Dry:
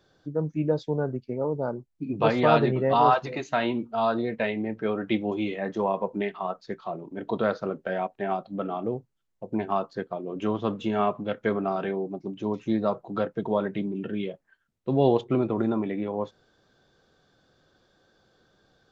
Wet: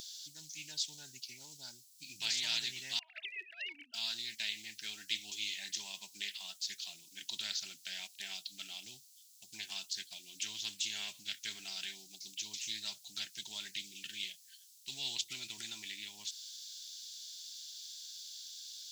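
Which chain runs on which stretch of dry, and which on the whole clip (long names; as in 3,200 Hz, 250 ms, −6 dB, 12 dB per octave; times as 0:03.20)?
0:02.99–0:03.94: three sine waves on the formant tracks + compressor whose output falls as the input rises −28 dBFS, ratio −0.5
whole clip: inverse Chebyshev high-pass filter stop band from 1,300 Hz, stop band 60 dB; every bin compressed towards the loudest bin 2 to 1; level +15 dB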